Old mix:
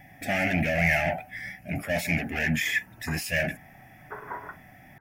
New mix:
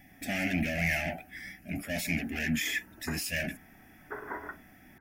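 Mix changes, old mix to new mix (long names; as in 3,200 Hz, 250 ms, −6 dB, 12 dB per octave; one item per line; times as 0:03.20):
background +8.0 dB
master: add octave-band graphic EQ 125/250/500/1,000/2,000 Hz −12/+4/−7/−11/−4 dB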